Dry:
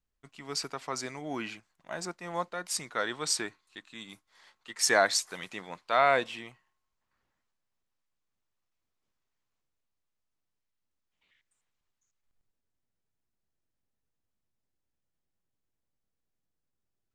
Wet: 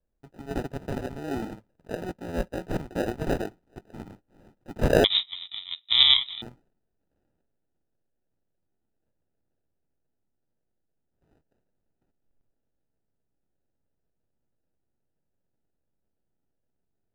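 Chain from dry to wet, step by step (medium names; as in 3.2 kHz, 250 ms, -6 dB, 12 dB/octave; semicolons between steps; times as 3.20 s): sample-and-hold 40×; treble shelf 2.1 kHz -11.5 dB; 5.04–6.42 s: frequency inversion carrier 3.8 kHz; trim +5 dB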